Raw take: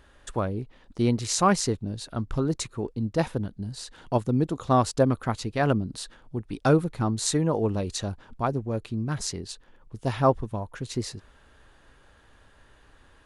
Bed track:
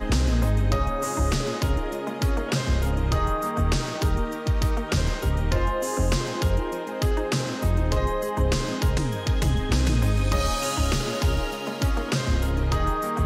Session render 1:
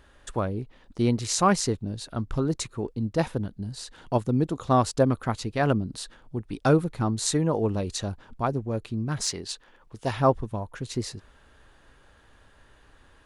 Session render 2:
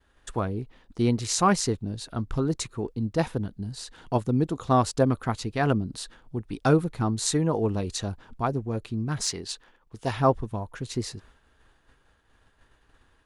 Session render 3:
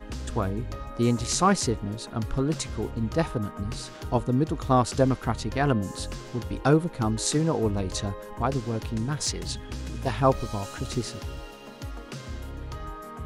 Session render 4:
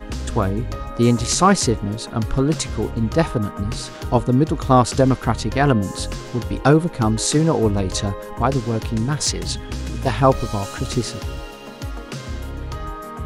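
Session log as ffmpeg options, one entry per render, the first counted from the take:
ffmpeg -i in.wav -filter_complex "[0:a]asettb=1/sr,asplit=3[link_01][link_02][link_03];[link_01]atrim=end=9.204[link_04];[link_02]atrim=start=9.2:end=10.11,asetpts=PTS-STARTPTS,afade=type=in:duration=0.004:curve=qsin,afade=type=out:start_time=0.906:duration=0.004:curve=qsin,asplit=2[link_05][link_06];[link_06]highpass=frequency=720:poles=1,volume=10dB,asoftclip=type=tanh:threshold=-12.5dB[link_07];[link_05][link_07]amix=inputs=2:normalize=0,lowpass=frequency=7900:poles=1,volume=-6dB[link_08];[link_03]atrim=start=10.106[link_09];[link_04][link_08]acrossfade=duration=0.004:curve1=hsin:curve2=qsin[link_10];[link_10][link_09]acrossfade=duration=0.004:curve1=qsin:curve2=hsin" out.wav
ffmpeg -i in.wav -af "agate=range=-33dB:threshold=-49dB:ratio=3:detection=peak,bandreject=frequency=570:width=12" out.wav
ffmpeg -i in.wav -i bed.wav -filter_complex "[1:a]volume=-13.5dB[link_01];[0:a][link_01]amix=inputs=2:normalize=0" out.wav
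ffmpeg -i in.wav -af "volume=7.5dB,alimiter=limit=-3dB:level=0:latency=1" out.wav

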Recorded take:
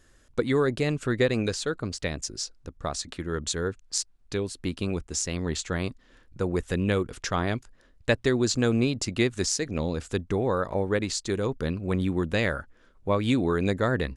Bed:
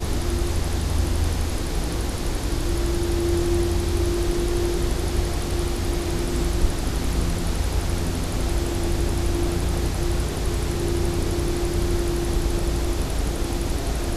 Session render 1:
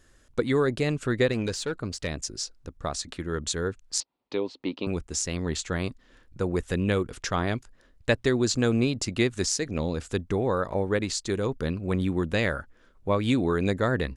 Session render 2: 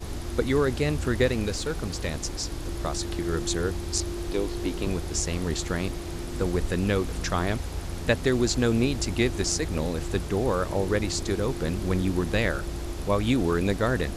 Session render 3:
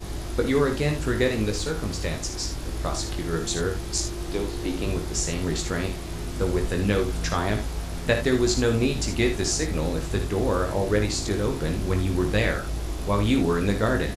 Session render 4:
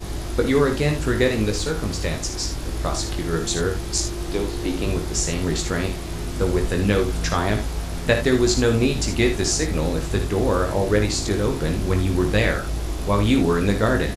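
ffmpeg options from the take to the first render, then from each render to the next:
ffmpeg -i in.wav -filter_complex "[0:a]asettb=1/sr,asplit=3[link_01][link_02][link_03];[link_01]atrim=end=1.324[link_04];[link_02]atrim=start=1.32:end=2.08,asetpts=PTS-STARTPTS,afade=type=in:duration=0.004:curve=qsin,afade=type=out:start_time=0.756:duration=0.004:curve=qsin,aeval=exprs='(tanh(10*val(0)+0.15)-tanh(0.15))/10':channel_layout=same[link_05];[link_03]atrim=start=2.076[link_06];[link_04][link_05]acrossfade=duration=0.004:curve1=hsin:curve2=qsin[link_07];[link_07][link_06]acrossfade=duration=0.004:curve1=qsin:curve2=hsin,asettb=1/sr,asplit=3[link_08][link_09][link_10];[link_08]atrim=end=4.004[link_11];[link_09]atrim=start=4:end=4.87,asetpts=PTS-STARTPTS,afade=type=in:duration=0.004:curve=qsin,afade=type=out:start_time=0.866:duration=0.004:curve=qsin,highpass=260,equalizer=frequency=280:width_type=q:width=4:gain=5,equalizer=frequency=530:width_type=q:width=4:gain=5,equalizer=frequency=920:width_type=q:width=4:gain=8,equalizer=frequency=1600:width_type=q:width=4:gain=-9,lowpass=frequency=4300:width=0.5412,lowpass=frequency=4300:width=1.3066[link_12];[link_10]atrim=start=4.866[link_13];[link_11][link_12]acrossfade=duration=0.004:curve1=hsin:curve2=qsin[link_14];[link_14][link_13]acrossfade=duration=0.004:curve1=qsin:curve2=hsin" out.wav
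ffmpeg -i in.wav -i bed.wav -filter_complex "[1:a]volume=-9.5dB[link_01];[0:a][link_01]amix=inputs=2:normalize=0" out.wav
ffmpeg -i in.wav -filter_complex "[0:a]asplit=2[link_01][link_02];[link_02]adelay=19,volume=-5.5dB[link_03];[link_01][link_03]amix=inputs=2:normalize=0,aecho=1:1:55|77:0.335|0.266" out.wav
ffmpeg -i in.wav -af "volume=3.5dB" out.wav

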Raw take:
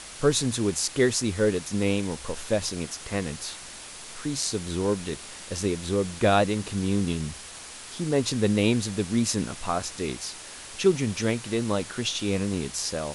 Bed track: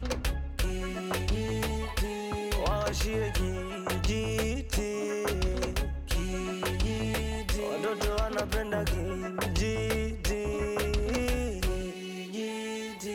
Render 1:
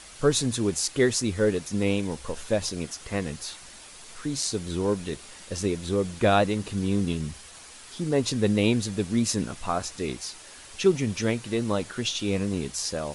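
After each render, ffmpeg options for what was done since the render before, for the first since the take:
ffmpeg -i in.wav -af "afftdn=noise_reduction=6:noise_floor=-42" out.wav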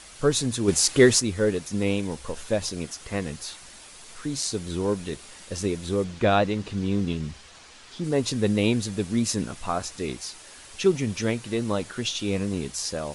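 ffmpeg -i in.wav -filter_complex "[0:a]asplit=3[link_01][link_02][link_03];[link_01]afade=type=out:start_time=0.67:duration=0.02[link_04];[link_02]acontrast=65,afade=type=in:start_time=0.67:duration=0.02,afade=type=out:start_time=1.19:duration=0.02[link_05];[link_03]afade=type=in:start_time=1.19:duration=0.02[link_06];[link_04][link_05][link_06]amix=inputs=3:normalize=0,asettb=1/sr,asplit=3[link_07][link_08][link_09];[link_07]atrim=end=6.044[link_10];[link_08]atrim=start=6.04:end=8.04,asetpts=PTS-STARTPTS,afade=type=in:duration=0.004:curve=qsin,afade=type=out:start_time=1.996:duration=0.004:curve=qsin,lowpass=5900[link_11];[link_09]atrim=start=8.036[link_12];[link_10][link_11]acrossfade=duration=0.004:curve1=hsin:curve2=qsin[link_13];[link_13][link_12]acrossfade=duration=0.004:curve1=qsin:curve2=hsin" out.wav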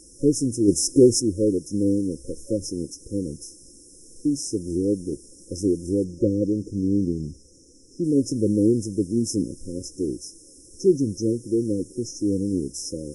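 ffmpeg -i in.wav -af "afftfilt=real='re*(1-between(b*sr/4096,550,5100))':imag='im*(1-between(b*sr/4096,550,5100))':win_size=4096:overlap=0.75,superequalizer=6b=2.82:13b=0.316:15b=0.708" out.wav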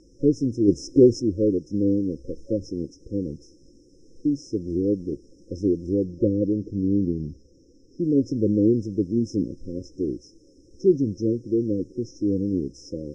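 ffmpeg -i in.wav -af "lowpass=frequency=4900:width=0.5412,lowpass=frequency=4900:width=1.3066,highshelf=frequency=3000:gain=-6.5" out.wav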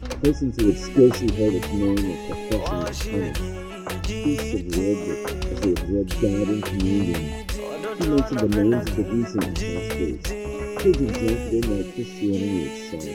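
ffmpeg -i in.wav -i bed.wav -filter_complex "[1:a]volume=1.5dB[link_01];[0:a][link_01]amix=inputs=2:normalize=0" out.wav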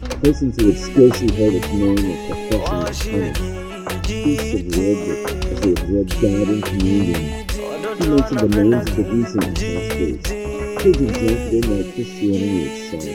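ffmpeg -i in.wav -af "volume=5dB,alimiter=limit=-2dB:level=0:latency=1" out.wav

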